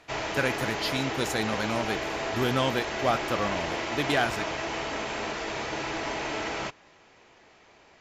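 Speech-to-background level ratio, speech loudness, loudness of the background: 1.5 dB, -30.0 LUFS, -31.5 LUFS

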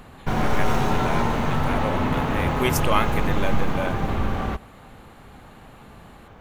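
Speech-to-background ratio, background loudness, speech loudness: -4.5 dB, -25.0 LUFS, -29.5 LUFS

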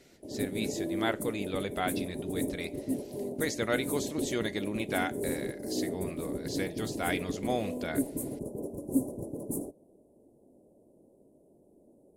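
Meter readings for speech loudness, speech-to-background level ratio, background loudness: -35.5 LUFS, 0.5 dB, -36.0 LUFS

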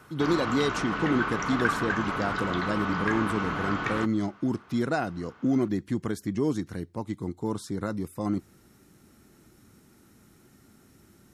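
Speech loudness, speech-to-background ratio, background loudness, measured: -30.0 LUFS, 0.0 dB, -30.0 LUFS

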